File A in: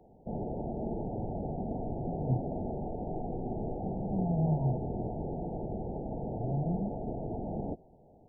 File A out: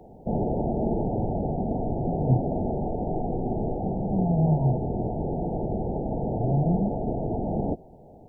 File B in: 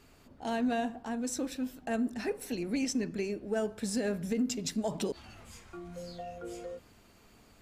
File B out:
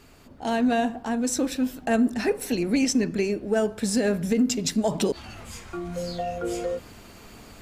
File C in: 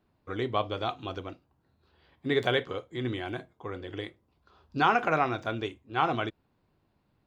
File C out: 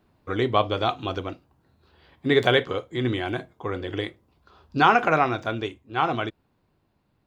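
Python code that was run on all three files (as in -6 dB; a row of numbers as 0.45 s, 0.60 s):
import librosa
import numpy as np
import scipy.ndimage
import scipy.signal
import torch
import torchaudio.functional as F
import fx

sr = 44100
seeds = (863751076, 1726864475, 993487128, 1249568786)

y = fx.rider(x, sr, range_db=4, speed_s=2.0)
y = y * 10.0 ** (-26 / 20.0) / np.sqrt(np.mean(np.square(y)))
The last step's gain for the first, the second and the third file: +7.5 dB, +9.5 dB, +4.5 dB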